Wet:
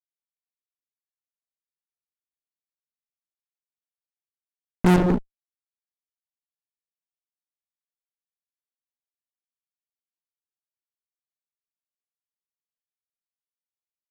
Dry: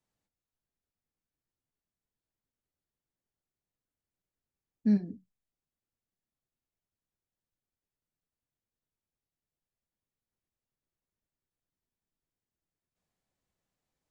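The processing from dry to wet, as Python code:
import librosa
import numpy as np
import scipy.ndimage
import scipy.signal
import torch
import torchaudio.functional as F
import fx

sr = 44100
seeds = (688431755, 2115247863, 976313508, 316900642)

y = fx.lpc_monotone(x, sr, seeds[0], pitch_hz=180.0, order=8)
y = fx.fuzz(y, sr, gain_db=46.0, gate_db=-54.0)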